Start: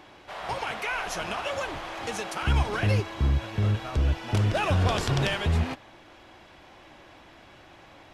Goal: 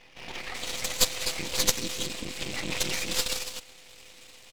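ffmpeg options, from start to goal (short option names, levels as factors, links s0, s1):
-filter_complex "[0:a]highshelf=f=10000:g=8,bandreject=f=50:t=h:w=6,bandreject=f=100:t=h:w=6,bandreject=f=150:t=h:w=6,bandreject=f=200:t=h:w=6,bandreject=f=250:t=h:w=6,bandreject=f=300:t=h:w=6,bandreject=f=350:t=h:w=6,bandreject=f=400:t=h:w=6,asplit=2[s0][s1];[s1]alimiter=limit=0.075:level=0:latency=1:release=84,volume=1.12[s2];[s0][s2]amix=inputs=2:normalize=0,atempo=1.8,afftfilt=real='hypot(re,im)*cos(2*PI*random(0))':imag='hypot(re,im)*sin(2*PI*random(1))':win_size=512:overlap=0.75,acrossover=split=4100[s3][s4];[s4]adelay=390[s5];[s3][s5]amix=inputs=2:normalize=0,aeval=exprs='val(0)*sin(2*PI*380*n/s)':c=same,asetrate=29433,aresample=44100,atempo=1.49831,aexciter=amount=13:drive=8.5:freq=2300,aeval=exprs='max(val(0),0)':c=same,volume=0.708"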